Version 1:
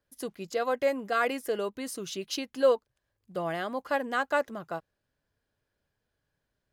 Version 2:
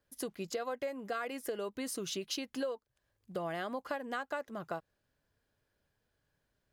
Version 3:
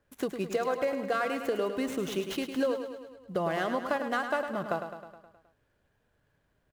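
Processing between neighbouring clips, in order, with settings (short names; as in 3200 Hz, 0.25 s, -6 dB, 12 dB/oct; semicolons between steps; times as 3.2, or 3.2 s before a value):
compressor 10:1, threshold -35 dBFS, peak gain reduction 17.5 dB; gain +1 dB
median filter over 9 samples; on a send: feedback echo 0.105 s, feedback 59%, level -8.5 dB; on the sum: gain +7.5 dB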